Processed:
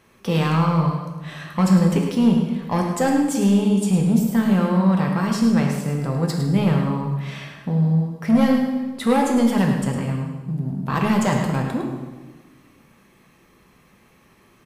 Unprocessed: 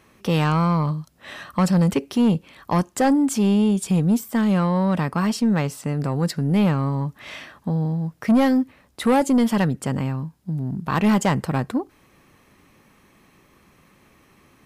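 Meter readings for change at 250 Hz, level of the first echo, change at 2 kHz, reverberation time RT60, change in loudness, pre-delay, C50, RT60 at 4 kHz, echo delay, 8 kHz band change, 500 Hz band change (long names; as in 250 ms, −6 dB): +1.5 dB, −9.0 dB, +0.5 dB, 1.3 s, +1.5 dB, 3 ms, 3.0 dB, 1.1 s, 106 ms, 0.0 dB, +0.5 dB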